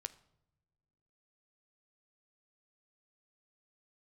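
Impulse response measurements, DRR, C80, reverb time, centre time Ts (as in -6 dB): 12.0 dB, 20.5 dB, not exponential, 3 ms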